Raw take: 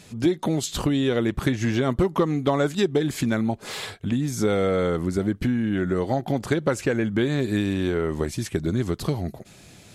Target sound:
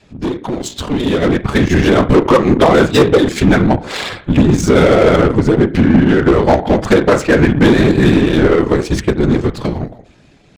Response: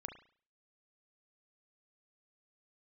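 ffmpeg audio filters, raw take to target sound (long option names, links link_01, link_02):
-filter_complex "[0:a]asplit=2[link_01][link_02];[1:a]atrim=start_sample=2205[link_03];[link_02][link_03]afir=irnorm=-1:irlink=0,volume=6.5dB[link_04];[link_01][link_04]amix=inputs=2:normalize=0,adynamicequalizer=threshold=0.0178:dfrequency=160:dqfactor=3.7:tfrequency=160:tqfactor=3.7:attack=5:release=100:ratio=0.375:range=3:mode=cutabove:tftype=bell,afftfilt=real='hypot(re,im)*cos(2*PI*random(0))':imag='hypot(re,im)*sin(2*PI*random(1))':win_size=512:overlap=0.75,asplit=2[link_05][link_06];[link_06]acrusher=bits=3:mix=0:aa=0.5,volume=-9dB[link_07];[link_05][link_07]amix=inputs=2:normalize=0,volume=14dB,asoftclip=hard,volume=-14dB,adynamicsmooth=sensitivity=4:basefreq=4000,atempo=0.94,dynaudnorm=framelen=200:gausssize=13:maxgain=11.5dB"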